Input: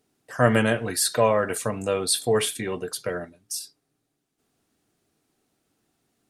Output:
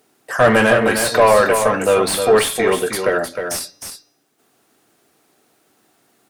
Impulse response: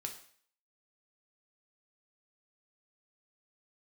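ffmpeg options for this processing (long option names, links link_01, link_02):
-filter_complex "[0:a]aemphasis=mode=production:type=50fm,bandreject=frequency=275.1:width_type=h:width=4,bandreject=frequency=550.2:width_type=h:width=4,bandreject=frequency=825.3:width_type=h:width=4,bandreject=frequency=1100.4:width_type=h:width=4,bandreject=frequency=1375.5:width_type=h:width=4,bandreject=frequency=1650.6:width_type=h:width=4,bandreject=frequency=1925.7:width_type=h:width=4,bandreject=frequency=2200.8:width_type=h:width=4,bandreject=frequency=2475.9:width_type=h:width=4,bandreject=frequency=2751:width_type=h:width=4,bandreject=frequency=3026.1:width_type=h:width=4,bandreject=frequency=3301.2:width_type=h:width=4,bandreject=frequency=3576.3:width_type=h:width=4,bandreject=frequency=3851.4:width_type=h:width=4,bandreject=frequency=4126.5:width_type=h:width=4,bandreject=frequency=4401.6:width_type=h:width=4,bandreject=frequency=4676.7:width_type=h:width=4,bandreject=frequency=4951.8:width_type=h:width=4,bandreject=frequency=5226.9:width_type=h:width=4,bandreject=frequency=5502:width_type=h:width=4,bandreject=frequency=5777.1:width_type=h:width=4,bandreject=frequency=6052.2:width_type=h:width=4,bandreject=frequency=6327.3:width_type=h:width=4,asplit=2[link_01][link_02];[link_02]highpass=frequency=720:poles=1,volume=24dB,asoftclip=type=tanh:threshold=-1dB[link_03];[link_01][link_03]amix=inputs=2:normalize=0,lowpass=frequency=1500:poles=1,volume=-6dB,aecho=1:1:310:0.447,asplit=2[link_04][link_05];[1:a]atrim=start_sample=2205,lowpass=2500[link_06];[link_05][link_06]afir=irnorm=-1:irlink=0,volume=-13dB[link_07];[link_04][link_07]amix=inputs=2:normalize=0,volume=-1dB"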